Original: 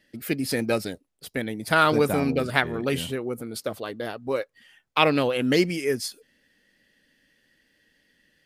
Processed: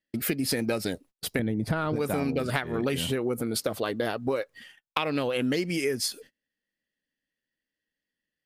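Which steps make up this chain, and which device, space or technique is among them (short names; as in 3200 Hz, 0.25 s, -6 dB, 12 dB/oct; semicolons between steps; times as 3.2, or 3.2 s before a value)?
gate -53 dBFS, range -31 dB; 1.39–1.96 tilt -3.5 dB/oct; serial compression, peaks first (compressor, threshold -27 dBFS, peak gain reduction 13.5 dB; compressor 2.5:1, threshold -34 dBFS, peak gain reduction 7 dB); gain +8 dB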